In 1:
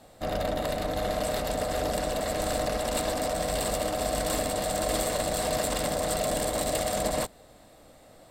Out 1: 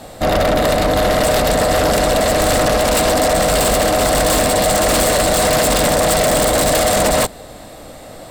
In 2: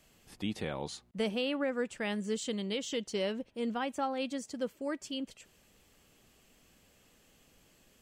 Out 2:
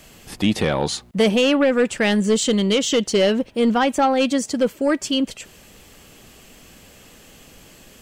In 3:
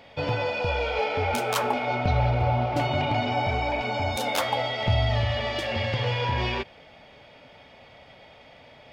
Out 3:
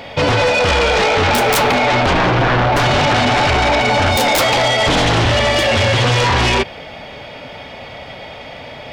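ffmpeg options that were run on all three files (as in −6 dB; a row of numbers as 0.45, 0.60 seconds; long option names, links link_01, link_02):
-af "aeval=exprs='0.266*sin(PI/2*4.47*val(0)/0.266)':channel_layout=same,volume=1dB"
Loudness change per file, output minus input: +14.5, +16.5, +12.5 LU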